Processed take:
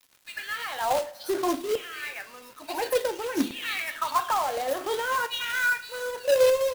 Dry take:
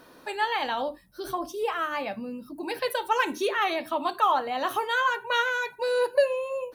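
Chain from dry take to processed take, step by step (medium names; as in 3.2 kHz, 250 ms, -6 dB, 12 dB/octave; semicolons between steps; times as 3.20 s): peak limiter -22.5 dBFS, peak gain reduction 11 dB; rotary cabinet horn 0.7 Hz; bands offset in time highs, lows 100 ms, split 2.6 kHz; LFO high-pass saw down 0.57 Hz 200–3100 Hz; companded quantiser 4-bit; two-slope reverb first 0.37 s, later 2.2 s, from -19 dB, DRR 9.5 dB; trim +4 dB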